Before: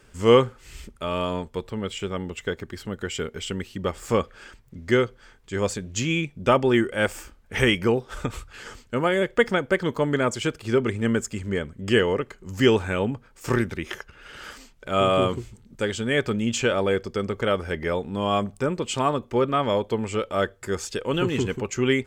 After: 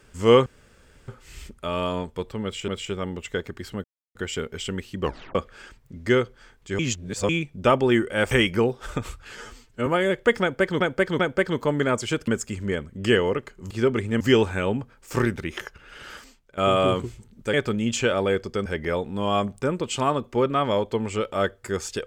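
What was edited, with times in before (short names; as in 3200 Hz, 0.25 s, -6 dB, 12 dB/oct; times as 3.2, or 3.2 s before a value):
0.46 insert room tone 0.62 s
1.81–2.06 loop, 2 plays
2.97 insert silence 0.31 s
3.84 tape stop 0.33 s
5.61–6.11 reverse
7.13–7.59 cut
8.65–8.98 stretch 1.5×
9.53–9.92 loop, 3 plays
10.61–11.11 move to 12.54
14.39–14.91 fade out, to -17.5 dB
15.87–16.14 cut
17.26–17.64 cut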